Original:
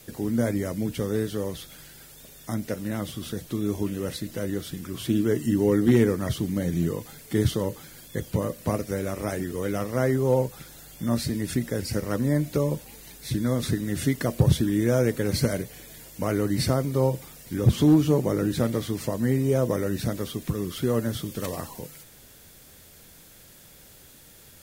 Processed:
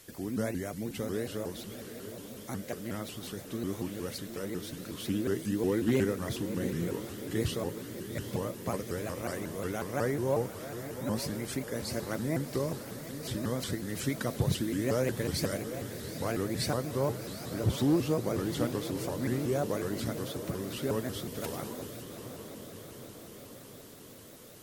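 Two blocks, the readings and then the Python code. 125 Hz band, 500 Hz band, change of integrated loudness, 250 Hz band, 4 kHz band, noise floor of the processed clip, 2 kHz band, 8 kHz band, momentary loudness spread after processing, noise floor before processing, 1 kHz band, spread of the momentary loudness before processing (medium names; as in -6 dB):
-9.0 dB, -6.5 dB, -7.5 dB, -8.0 dB, -4.0 dB, -49 dBFS, -4.0 dB, -4.0 dB, 13 LU, -51 dBFS, -4.0 dB, 13 LU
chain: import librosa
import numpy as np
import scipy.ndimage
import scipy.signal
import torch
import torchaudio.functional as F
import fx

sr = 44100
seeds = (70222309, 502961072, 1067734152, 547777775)

p1 = fx.low_shelf(x, sr, hz=390.0, db=-6.0)
p2 = p1 + fx.echo_diffused(p1, sr, ms=777, feedback_pct=66, wet_db=-10, dry=0)
p3 = fx.vibrato_shape(p2, sr, shape='saw_up', rate_hz=5.5, depth_cents=250.0)
y = p3 * 10.0 ** (-4.5 / 20.0)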